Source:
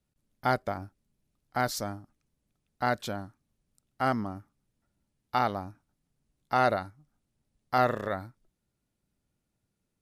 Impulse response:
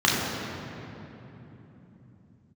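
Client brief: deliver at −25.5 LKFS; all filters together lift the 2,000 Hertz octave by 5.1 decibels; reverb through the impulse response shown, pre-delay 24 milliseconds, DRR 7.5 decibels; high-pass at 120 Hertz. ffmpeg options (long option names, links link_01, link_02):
-filter_complex "[0:a]highpass=120,equalizer=frequency=2000:width_type=o:gain=7,asplit=2[link_01][link_02];[1:a]atrim=start_sample=2205,adelay=24[link_03];[link_02][link_03]afir=irnorm=-1:irlink=0,volume=-26.5dB[link_04];[link_01][link_04]amix=inputs=2:normalize=0,volume=4dB"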